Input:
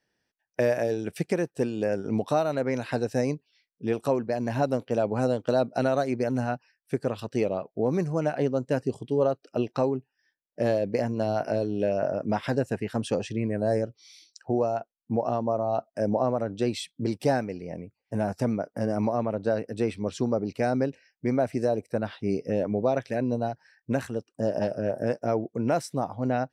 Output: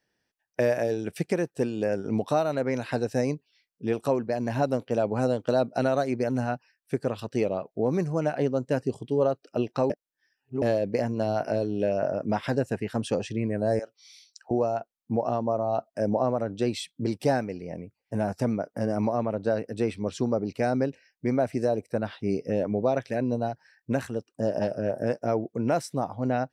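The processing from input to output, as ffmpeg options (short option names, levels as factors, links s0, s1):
-filter_complex "[0:a]asettb=1/sr,asplit=3[s0][s1][s2];[s0]atrim=end=13.794[s3];[s1]atrim=start=13.79:end=14.51,asetpts=PTS-STARTPTS,afade=t=in:d=0.004:c=qsin,afade=t=out:st=0.716:d=0.004:c=qsin,highpass=780[s4];[s2]atrim=start=14.506[s5];[s3][s4]acrossfade=d=0.004:c1=hsin:c2=qsin[s6];[s6][s5]acrossfade=d=0.004:c1=qsin:c2=hsin,asplit=3[s7][s8][s9];[s7]atrim=end=9.902[s10];[s8]atrim=start=9.898:end=10.622,asetpts=PTS-STARTPTS,areverse[s11];[s9]atrim=start=10.618[s12];[s10][s11]acrossfade=d=0.004:c1=hsin:c2=hsin[s13];[s13][s12]acrossfade=d=0.004:c1=hsin:c2=hsin"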